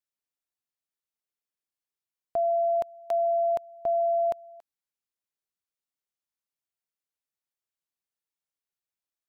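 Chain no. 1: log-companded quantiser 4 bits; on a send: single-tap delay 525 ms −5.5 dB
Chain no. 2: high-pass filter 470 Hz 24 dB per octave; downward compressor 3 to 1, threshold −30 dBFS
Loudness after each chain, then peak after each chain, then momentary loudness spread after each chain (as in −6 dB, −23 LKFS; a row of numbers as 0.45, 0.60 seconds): −27.5, −32.5 LKFS; −18.5, −21.5 dBFS; 7, 7 LU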